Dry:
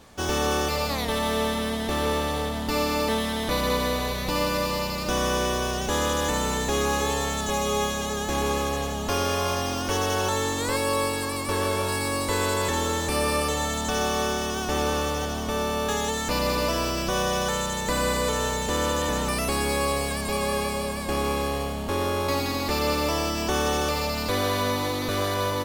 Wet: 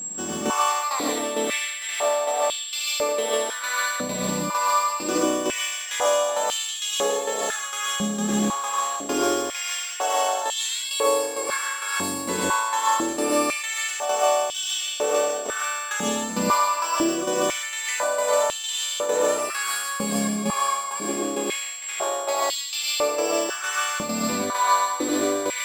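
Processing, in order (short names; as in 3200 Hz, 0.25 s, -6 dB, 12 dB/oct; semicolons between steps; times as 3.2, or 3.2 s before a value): whine 7600 Hz -29 dBFS; tremolo saw down 2.2 Hz, depth 90%; added noise brown -47 dBFS; non-linear reverb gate 0.17 s rising, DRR -3.5 dB; stepped high-pass 2 Hz 210–3200 Hz; gain -2.5 dB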